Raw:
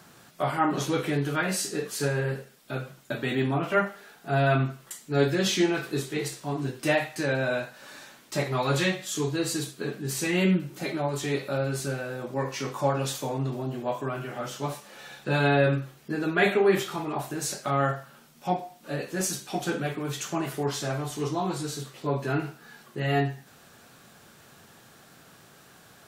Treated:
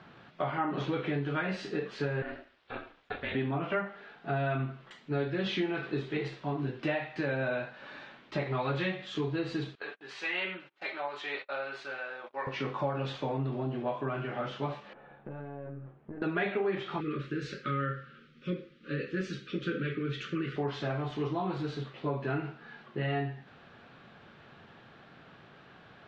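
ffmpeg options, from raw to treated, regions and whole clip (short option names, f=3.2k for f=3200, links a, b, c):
-filter_complex "[0:a]asettb=1/sr,asplit=3[a][b][c];[a]atrim=end=2.224[d];[b]atrim=start=2.22:end=3.35,asetpts=PTS-STARTPTS,afade=t=in:d=0.004:c=qsin,afade=t=out:st=1.126:d=0.004:c=qsin,highpass=f=600:p=1,aeval=exprs='val(0)*sin(2*PI*150*n/s)':c=same[e];[c]atrim=start=3.346[f];[d][e]acrossfade=d=0.004:c1=hsin:c2=qsin[g];[g][f]acrossfade=d=0.004:c1=qsin:c2=hsin,asettb=1/sr,asplit=3[h][i][j];[h]atrim=end=9.754[k];[i]atrim=start=9.75:end=12.47,asetpts=PTS-STARTPTS,afade=t=in:d=0.004:c=qsin,afade=t=out:st=2.716:d=0.004:c=qsin,agate=range=-34dB:threshold=-37dB:ratio=16:release=100:detection=peak,highpass=850,acompressor=mode=upward:threshold=-47dB:ratio=2.5:attack=3.2:release=140:knee=2.83:detection=peak[l];[j]atrim=start=12.466[m];[k][l]acrossfade=d=0.004:c1=hsin:c2=qsin[n];[n][m]acrossfade=d=0.004:c1=qsin:c2=hsin,asettb=1/sr,asplit=3[o][p][q];[o]atrim=end=14.934[r];[p]atrim=start=14.93:end=16.22,asetpts=PTS-STARTPTS,afade=t=in:d=0.004:c=qsin,afade=t=out:st=1.286:d=0.004:c=qsin,lowpass=1k,acompressor=threshold=-35dB:ratio=16:attack=3.2:release=140:knee=1:detection=peak,aeval=exprs='(tanh(39.8*val(0)+0.6)-tanh(0.6))/39.8':c=same[s];[q]atrim=start=16.216[t];[r][s]acrossfade=d=0.004:c1=hsin:c2=qsin[u];[u][t]acrossfade=d=0.004:c1=qsin:c2=hsin,asettb=1/sr,asplit=3[v][w][x];[v]atrim=end=17.004[y];[w]atrim=start=17:end=20.56,asetpts=PTS-STARTPTS,afade=t=in:d=0.004:c=qsin,afade=t=out:st=3.556:d=0.004:c=qsin,asuperstop=centerf=800:order=12:qfactor=1.2,highshelf=f=12k:g=-4.5[z];[x]atrim=start=20.556[aa];[y][z]acrossfade=d=0.004:c1=hsin:c2=qsin[ab];[ab][aa]acrossfade=d=0.004:c1=qsin:c2=hsin,lowpass=f=3.4k:w=0.5412,lowpass=f=3.4k:w=1.3066,acompressor=threshold=-29dB:ratio=4"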